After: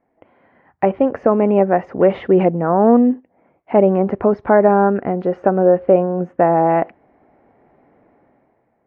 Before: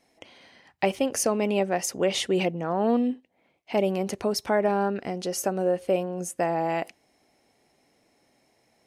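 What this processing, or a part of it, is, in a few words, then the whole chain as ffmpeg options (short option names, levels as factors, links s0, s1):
action camera in a waterproof case: -af "lowpass=f=1600:w=0.5412,lowpass=f=1600:w=1.3066,dynaudnorm=f=130:g=11:m=4.22,volume=1.12" -ar 24000 -c:a aac -b:a 64k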